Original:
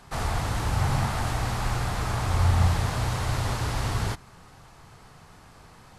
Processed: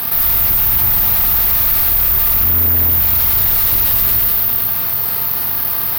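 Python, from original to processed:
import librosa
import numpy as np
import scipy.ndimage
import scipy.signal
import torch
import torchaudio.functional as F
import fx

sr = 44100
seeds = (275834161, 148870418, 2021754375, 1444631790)

y = scipy.signal.sosfilt(scipy.signal.butter(4, 5300.0, 'lowpass', fs=sr, output='sos'), x)
y = fx.rev_schroeder(y, sr, rt60_s=1.6, comb_ms=27, drr_db=-6.5)
y = (np.kron(scipy.signal.resample_poly(y, 1, 3), np.eye(3)[0]) * 3)[:len(y)]
y = fx.highpass(y, sr, hz=60.0, slope=6)
y = fx.high_shelf(y, sr, hz=2300.0, db=10.0)
y = 10.0 ** (-11.5 / 20.0) * np.tanh(y / 10.0 ** (-11.5 / 20.0))
y = fx.env_flatten(y, sr, amount_pct=70)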